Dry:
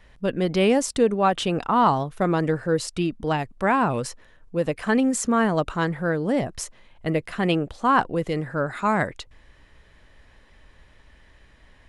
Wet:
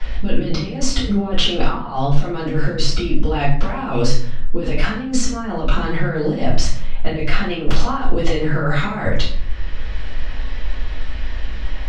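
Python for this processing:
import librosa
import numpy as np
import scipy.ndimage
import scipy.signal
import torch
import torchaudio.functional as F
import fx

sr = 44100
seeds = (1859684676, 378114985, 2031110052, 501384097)

y = scipy.signal.sosfilt(scipy.signal.butter(4, 5100.0, 'lowpass', fs=sr, output='sos'), x)
y = fx.low_shelf(y, sr, hz=72.0, db=11.5)
y = fx.over_compress(y, sr, threshold_db=-26.0, ratio=-0.5)
y = fx.transient(y, sr, attack_db=-9, sustain_db=11, at=(7.46, 8.39), fade=0.02)
y = fx.high_shelf(y, sr, hz=3600.0, db=11.5)
y = fx.room_shoebox(y, sr, seeds[0], volume_m3=50.0, walls='mixed', distance_m=2.9)
y = fx.band_squash(y, sr, depth_pct=40)
y = F.gain(torch.from_numpy(y), -7.5).numpy()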